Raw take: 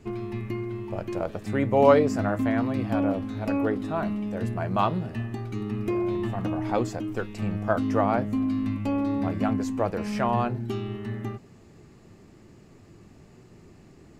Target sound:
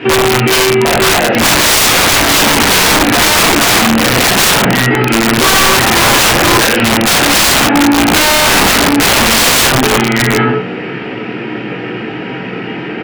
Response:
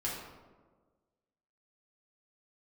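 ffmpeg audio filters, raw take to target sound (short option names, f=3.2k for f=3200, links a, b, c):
-filter_complex "[0:a]bandreject=f=60:t=h:w=6,bandreject=f=120:t=h:w=6,bandreject=f=180:t=h:w=6,bandreject=f=240:t=h:w=6,bandreject=f=300:t=h:w=6,bandreject=f=360:t=h:w=6,bandreject=f=420:t=h:w=6,bandreject=f=480:t=h:w=6,bandreject=f=540:t=h:w=6,aeval=exprs='(tanh(28.2*val(0)+0.2)-tanh(0.2))/28.2':c=same,aeval=exprs='val(0)+0.000708*(sin(2*PI*50*n/s)+sin(2*PI*2*50*n/s)/2+sin(2*PI*3*50*n/s)/3+sin(2*PI*4*50*n/s)/4+sin(2*PI*5*50*n/s)/5)':c=same,highpass=280,equalizer=f=360:t=q:w=4:g=-6,equalizer=f=580:t=q:w=4:g=-6,equalizer=f=1k:t=q:w=4:g=-7,equalizer=f=1.5k:t=q:w=4:g=6,equalizer=f=2.4k:t=q:w=4:g=7,lowpass=f=3k:w=0.5412,lowpass=f=3k:w=1.3066,asplit=2[a][b];[b]adelay=25,volume=-11.5dB[c];[a][c]amix=inputs=2:normalize=0[d];[1:a]atrim=start_sample=2205,afade=t=out:st=0.24:d=0.01,atrim=end_sample=11025[e];[d][e]afir=irnorm=-1:irlink=0,aeval=exprs='(mod(33.5*val(0)+1,2)-1)/33.5':c=same,asetrate=48000,aresample=44100,alimiter=level_in=34.5dB:limit=-1dB:release=50:level=0:latency=1,volume=-1dB"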